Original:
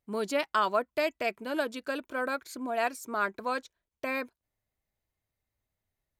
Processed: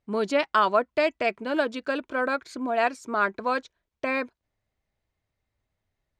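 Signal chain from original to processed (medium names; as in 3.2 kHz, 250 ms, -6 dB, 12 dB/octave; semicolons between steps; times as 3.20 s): distance through air 94 m; trim +6 dB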